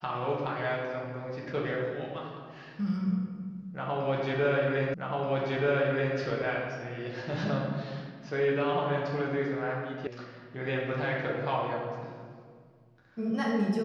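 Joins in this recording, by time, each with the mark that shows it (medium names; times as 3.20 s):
4.94 s: repeat of the last 1.23 s
10.07 s: sound stops dead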